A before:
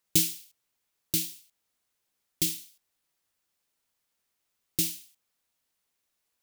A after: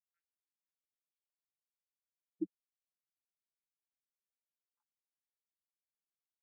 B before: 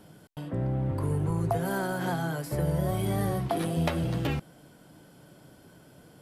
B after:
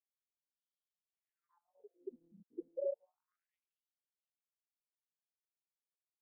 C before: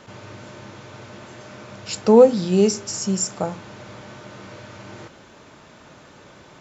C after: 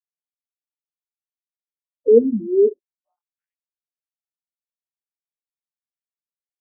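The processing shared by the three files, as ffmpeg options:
-af "afftfilt=real='re*gte(hypot(re,im),0.2)':imag='im*gte(hypot(re,im),0.2)':win_size=1024:overlap=0.75,afftfilt=real='re*between(b*sr/1024,300*pow(4400/300,0.5+0.5*sin(2*PI*0.31*pts/sr))/1.41,300*pow(4400/300,0.5+0.5*sin(2*PI*0.31*pts/sr))*1.41)':imag='im*between(b*sr/1024,300*pow(4400/300,0.5+0.5*sin(2*PI*0.31*pts/sr))/1.41,300*pow(4400/300,0.5+0.5*sin(2*PI*0.31*pts/sr))*1.41)':win_size=1024:overlap=0.75,volume=1.58"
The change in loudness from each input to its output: -15.5 LU, -15.0 LU, +1.0 LU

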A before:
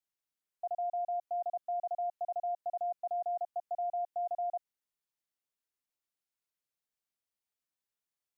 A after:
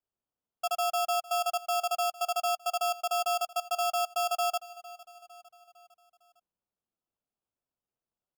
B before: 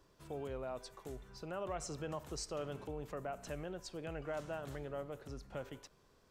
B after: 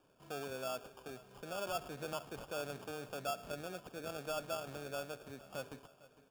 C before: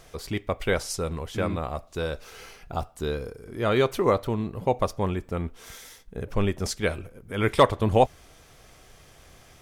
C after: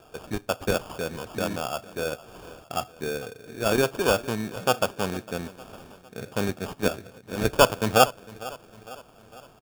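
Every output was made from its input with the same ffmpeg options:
-af "highpass=f=120:w=0.5412,highpass=f=120:w=1.3066,equalizer=f=160:t=q:w=4:g=-5,equalizer=f=350:t=q:w=4:g=-4,equalizer=f=710:t=q:w=4:g=6,equalizer=f=1200:t=q:w=4:g=-7,equalizer=f=2200:t=q:w=4:g=4,lowpass=f=5000:w=0.5412,lowpass=f=5000:w=1.3066,acrusher=samples=22:mix=1:aa=0.000001,aecho=1:1:455|910|1365|1820:0.112|0.0583|0.0303|0.0158"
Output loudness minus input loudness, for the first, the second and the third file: +6.5 LU, +1.0 LU, +0.5 LU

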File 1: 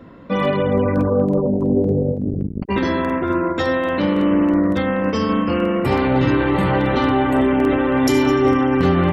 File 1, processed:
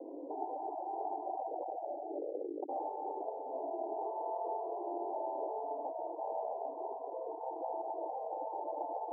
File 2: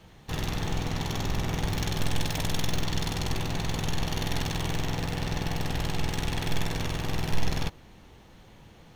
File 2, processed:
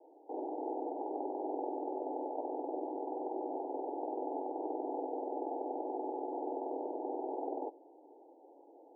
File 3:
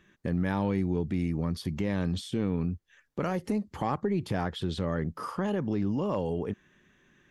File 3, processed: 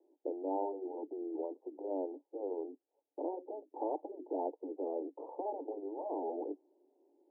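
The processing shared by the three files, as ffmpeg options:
-af "afftfilt=real='re*lt(hypot(re,im),0.158)':imag='im*lt(hypot(re,im),0.158)':win_size=1024:overlap=0.75,asuperpass=centerf=500:order=20:qfactor=0.82,volume=1.12"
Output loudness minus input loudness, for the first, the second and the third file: -22.0 LU, -8.0 LU, -9.5 LU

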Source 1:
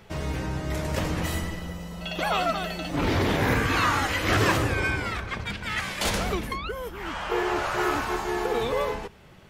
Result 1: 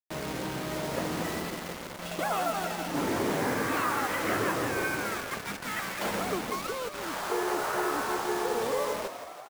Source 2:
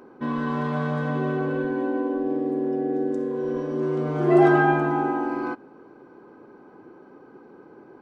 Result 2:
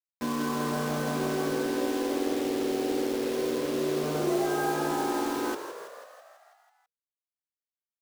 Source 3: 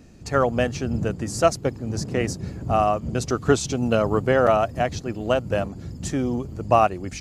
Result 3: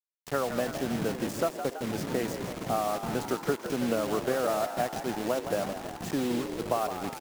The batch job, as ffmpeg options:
-filter_complex "[0:a]acrossover=split=150 2000:gain=0.0794 1 0.224[s0][s1][s2];[s0][s1][s2]amix=inputs=3:normalize=0,acompressor=threshold=0.0631:ratio=6,acrusher=bits=5:mix=0:aa=0.000001,asplit=9[s3][s4][s5][s6][s7][s8][s9][s10][s11];[s4]adelay=164,afreqshift=59,volume=0.335[s12];[s5]adelay=328,afreqshift=118,volume=0.211[s13];[s6]adelay=492,afreqshift=177,volume=0.133[s14];[s7]adelay=656,afreqshift=236,volume=0.0841[s15];[s8]adelay=820,afreqshift=295,volume=0.0525[s16];[s9]adelay=984,afreqshift=354,volume=0.0331[s17];[s10]adelay=1148,afreqshift=413,volume=0.0209[s18];[s11]adelay=1312,afreqshift=472,volume=0.0132[s19];[s3][s12][s13][s14][s15][s16][s17][s18][s19]amix=inputs=9:normalize=0,volume=0.841"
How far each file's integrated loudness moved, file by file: -4.0 LU, -5.5 LU, -8.0 LU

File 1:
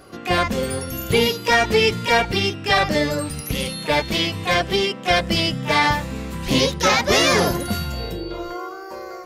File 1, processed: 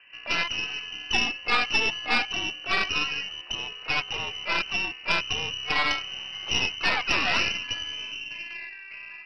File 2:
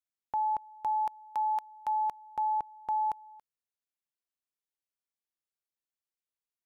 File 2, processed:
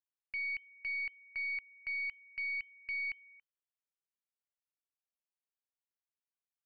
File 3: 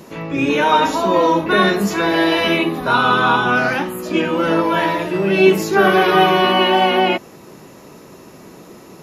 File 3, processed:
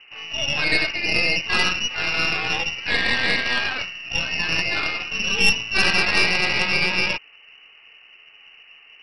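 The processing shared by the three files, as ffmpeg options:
-af "lowpass=f=2600:t=q:w=0.5098,lowpass=f=2600:t=q:w=0.6013,lowpass=f=2600:t=q:w=0.9,lowpass=f=2600:t=q:w=2.563,afreqshift=-3100,aeval=exprs='1*(cos(1*acos(clip(val(0)/1,-1,1)))-cos(1*PI/2))+0.0501*(cos(3*acos(clip(val(0)/1,-1,1)))-cos(3*PI/2))+0.355*(cos(4*acos(clip(val(0)/1,-1,1)))-cos(4*PI/2))+0.02*(cos(5*acos(clip(val(0)/1,-1,1)))-cos(5*PI/2))+0.01*(cos(6*acos(clip(val(0)/1,-1,1)))-cos(6*PI/2))':c=same,volume=0.422"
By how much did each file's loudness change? -6.5 LU, -5.0 LU, -4.5 LU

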